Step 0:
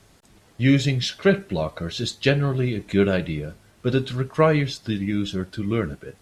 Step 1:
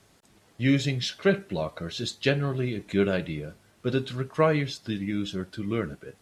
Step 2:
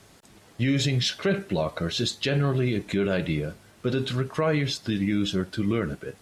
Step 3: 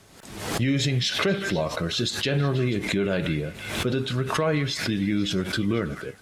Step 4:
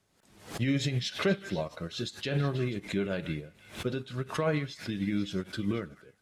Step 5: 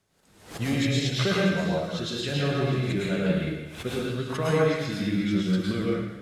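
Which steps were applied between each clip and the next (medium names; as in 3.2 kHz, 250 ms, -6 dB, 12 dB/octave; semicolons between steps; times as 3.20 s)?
bass shelf 63 Hz -11.5 dB; trim -4 dB
peak limiter -21.5 dBFS, peak gain reduction 11.5 dB; trim +6.5 dB
repeats whose band climbs or falls 162 ms, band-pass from 1.6 kHz, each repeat 0.7 oct, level -11 dB; swell ahead of each attack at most 59 dB/s
on a send at -22 dB: reverberation RT60 0.15 s, pre-delay 3 ms; on the sum: upward expansion 2.5:1, over -32 dBFS; trim -2 dB
plate-style reverb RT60 1 s, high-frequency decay 0.95×, pre-delay 95 ms, DRR -5 dB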